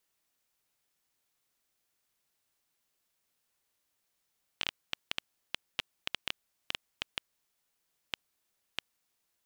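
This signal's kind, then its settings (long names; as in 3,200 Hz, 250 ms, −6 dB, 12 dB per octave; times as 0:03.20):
Geiger counter clicks 4 per second −13 dBFS 4.94 s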